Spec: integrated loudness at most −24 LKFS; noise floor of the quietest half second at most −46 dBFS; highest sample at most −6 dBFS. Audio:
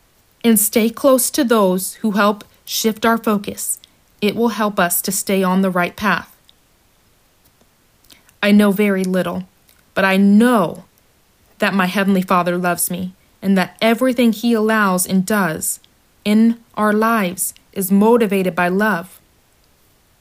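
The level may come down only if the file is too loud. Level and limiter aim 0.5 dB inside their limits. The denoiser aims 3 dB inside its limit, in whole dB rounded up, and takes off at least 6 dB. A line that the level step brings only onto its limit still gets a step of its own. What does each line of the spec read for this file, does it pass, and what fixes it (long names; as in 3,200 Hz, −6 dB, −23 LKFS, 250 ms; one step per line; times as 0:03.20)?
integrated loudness −16.5 LKFS: out of spec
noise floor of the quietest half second −56 dBFS: in spec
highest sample −3.0 dBFS: out of spec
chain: level −8 dB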